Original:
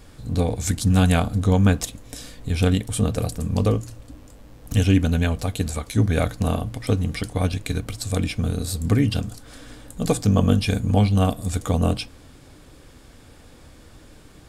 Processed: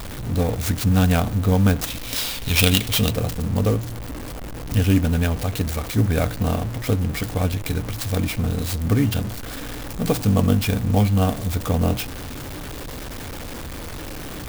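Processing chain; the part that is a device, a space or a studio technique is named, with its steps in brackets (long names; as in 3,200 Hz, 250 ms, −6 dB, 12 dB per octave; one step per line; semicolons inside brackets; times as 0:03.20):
0:01.90–0:03.13: flat-topped bell 3,700 Hz +16 dB
early CD player with a faulty converter (converter with a step at zero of −26.5 dBFS; converter with an unsteady clock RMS 0.036 ms)
level −1 dB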